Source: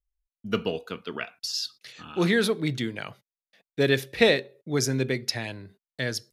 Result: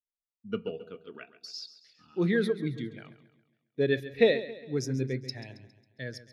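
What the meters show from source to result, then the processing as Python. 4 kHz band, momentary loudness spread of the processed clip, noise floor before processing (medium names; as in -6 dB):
-10.5 dB, 21 LU, under -85 dBFS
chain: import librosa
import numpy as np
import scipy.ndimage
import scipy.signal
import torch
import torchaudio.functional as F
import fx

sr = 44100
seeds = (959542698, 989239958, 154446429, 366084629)

p1 = x + fx.echo_feedback(x, sr, ms=136, feedback_pct=59, wet_db=-10, dry=0)
p2 = fx.spectral_expand(p1, sr, expansion=1.5)
y = p2 * 10.0 ** (-4.0 / 20.0)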